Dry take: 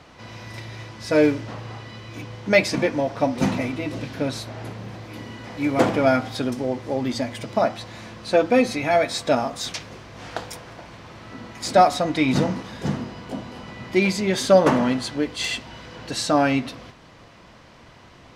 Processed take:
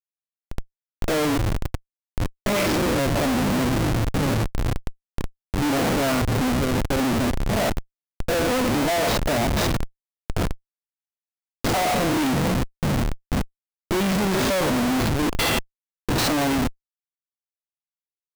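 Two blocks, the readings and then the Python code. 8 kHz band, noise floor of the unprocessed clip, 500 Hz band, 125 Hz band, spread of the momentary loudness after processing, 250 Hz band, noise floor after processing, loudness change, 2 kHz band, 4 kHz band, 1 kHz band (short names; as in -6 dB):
+4.0 dB, -48 dBFS, -3.5 dB, +5.0 dB, 14 LU, +0.5 dB, under -85 dBFS, -1.0 dB, 0.0 dB, +2.0 dB, -2.0 dB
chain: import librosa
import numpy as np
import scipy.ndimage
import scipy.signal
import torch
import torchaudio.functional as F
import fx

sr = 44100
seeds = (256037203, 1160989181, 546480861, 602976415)

y = fx.spec_steps(x, sr, hold_ms=100)
y = fx.schmitt(y, sr, flips_db=-28.5)
y = y * librosa.db_to_amplitude(4.5)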